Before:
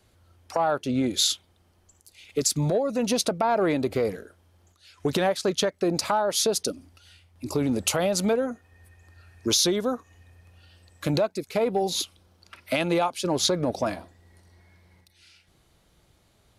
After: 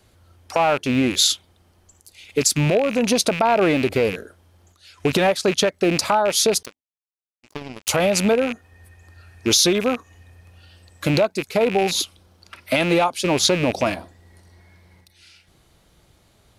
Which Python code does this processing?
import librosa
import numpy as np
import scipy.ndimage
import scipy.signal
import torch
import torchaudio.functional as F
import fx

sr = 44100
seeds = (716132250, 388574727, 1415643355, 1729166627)

y = fx.rattle_buzz(x, sr, strikes_db=-38.0, level_db=-22.0)
y = fx.power_curve(y, sr, exponent=3.0, at=(6.63, 7.89))
y = F.gain(torch.from_numpy(y), 5.5).numpy()